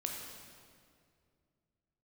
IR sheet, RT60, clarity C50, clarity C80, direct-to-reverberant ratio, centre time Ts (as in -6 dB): 2.3 s, 2.0 dB, 3.5 dB, 0.0 dB, 77 ms